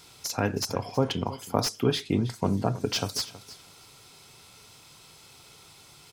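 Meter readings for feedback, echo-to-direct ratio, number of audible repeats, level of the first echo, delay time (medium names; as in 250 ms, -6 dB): 18%, -17.0 dB, 2, -17.0 dB, 321 ms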